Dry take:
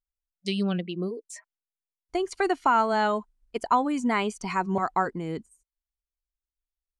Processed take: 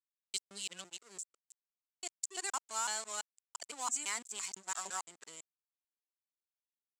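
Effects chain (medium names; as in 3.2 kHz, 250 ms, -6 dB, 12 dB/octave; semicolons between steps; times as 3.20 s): time reversed locally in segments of 169 ms; crossover distortion -37.5 dBFS; band-pass filter 7.6 kHz, Q 6.5; trim +18 dB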